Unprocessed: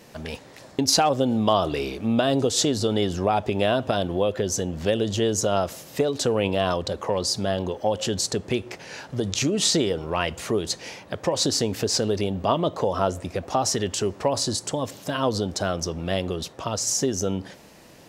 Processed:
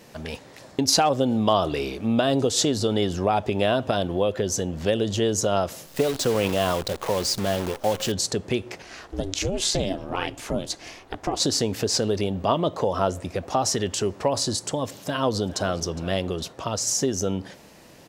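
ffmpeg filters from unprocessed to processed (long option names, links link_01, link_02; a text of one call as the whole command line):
ffmpeg -i in.wav -filter_complex "[0:a]asettb=1/sr,asplit=3[link_01][link_02][link_03];[link_01]atrim=end=5.864[link_04];[link_02]atrim=start=5.86:end=8.12,asetpts=PTS-STARTPTS,afade=type=in:duration=0.004:curve=qsin,afade=type=out:start_time=2.256:duration=0.004:curve=qsin,acrusher=bits=6:dc=4:mix=0:aa=0.000001[link_05];[link_03]atrim=start=8.116[link_06];[link_04][link_05]acrossfade=duration=0.004:curve1=hsin:curve2=qsin[link_07];[link_07][link_06]acrossfade=duration=0.004:curve1=qsin:curve2=hsin,asettb=1/sr,asplit=3[link_08][link_09][link_10];[link_08]atrim=end=8.824[link_11];[link_09]atrim=start=8.82:end=11.4,asetpts=PTS-STARTPTS,afade=type=in:duration=0.004:curve=qsin,afade=type=out:start_time=2.576:duration=0.004:curve=qsin,aeval=exprs='val(0)*sin(2*PI*190*n/s)':channel_layout=same[link_12];[link_10]atrim=start=11.396[link_13];[link_11][link_12]acrossfade=duration=0.004:curve1=hsin:curve2=qsin[link_14];[link_14][link_13]acrossfade=duration=0.004:curve1=qsin:curve2=hsin,asplit=2[link_15][link_16];[link_16]afade=type=in:start_time=14.99:duration=0.01,afade=type=out:start_time=15.69:duration=0.01,aecho=0:1:410|820|1230:0.133352|0.0466733|0.0163356[link_17];[link_15][link_17]amix=inputs=2:normalize=0" out.wav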